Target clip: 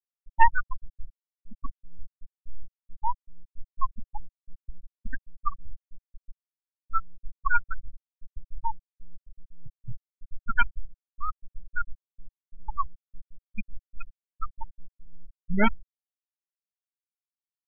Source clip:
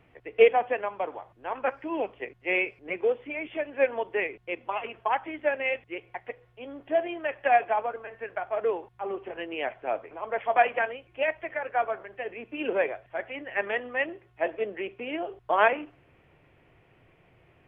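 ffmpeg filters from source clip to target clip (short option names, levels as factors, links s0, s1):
-af "aeval=exprs='abs(val(0))':c=same,adynamicsmooth=sensitivity=7:basefreq=820,afftfilt=real='re*gte(hypot(re,im),0.251)':imag='im*gte(hypot(re,im),0.251)':win_size=1024:overlap=0.75,volume=1.58"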